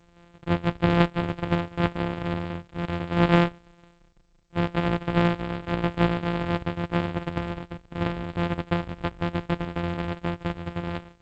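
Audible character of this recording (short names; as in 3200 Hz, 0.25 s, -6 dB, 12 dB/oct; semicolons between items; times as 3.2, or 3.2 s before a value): a buzz of ramps at a fixed pitch in blocks of 256 samples; tremolo saw down 6 Hz, depth 40%; G.722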